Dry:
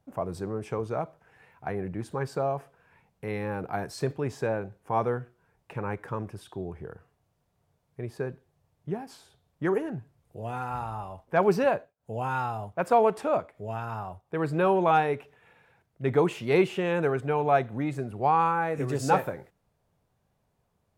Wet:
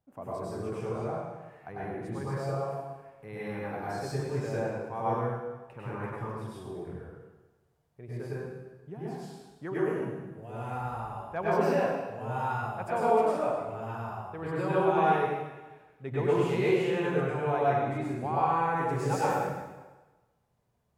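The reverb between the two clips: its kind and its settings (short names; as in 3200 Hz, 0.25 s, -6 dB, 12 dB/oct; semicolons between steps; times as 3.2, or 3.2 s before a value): plate-style reverb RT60 1.2 s, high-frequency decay 0.9×, pre-delay 85 ms, DRR -8.5 dB; gain -11.5 dB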